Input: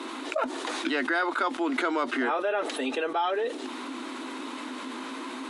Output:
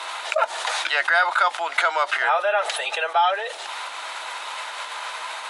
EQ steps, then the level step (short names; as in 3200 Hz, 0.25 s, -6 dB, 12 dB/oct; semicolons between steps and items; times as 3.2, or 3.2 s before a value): steep high-pass 610 Hz 36 dB/oct; notch 1100 Hz, Q 12; +9.0 dB